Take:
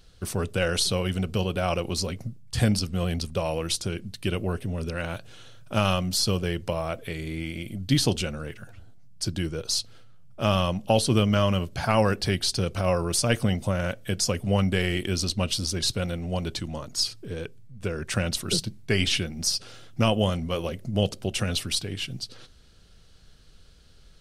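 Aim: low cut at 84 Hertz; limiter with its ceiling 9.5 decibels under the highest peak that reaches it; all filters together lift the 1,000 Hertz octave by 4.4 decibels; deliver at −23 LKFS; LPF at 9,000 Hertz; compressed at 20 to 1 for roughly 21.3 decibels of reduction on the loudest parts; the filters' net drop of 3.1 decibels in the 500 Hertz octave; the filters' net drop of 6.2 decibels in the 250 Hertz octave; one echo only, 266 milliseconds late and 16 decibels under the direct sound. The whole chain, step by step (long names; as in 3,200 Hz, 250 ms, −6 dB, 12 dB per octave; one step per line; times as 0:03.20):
high-pass filter 84 Hz
low-pass filter 9,000 Hz
parametric band 250 Hz −8.5 dB
parametric band 500 Hz −4 dB
parametric band 1,000 Hz +7.5 dB
downward compressor 20 to 1, threshold −38 dBFS
brickwall limiter −32 dBFS
single-tap delay 266 ms −16 dB
level +21.5 dB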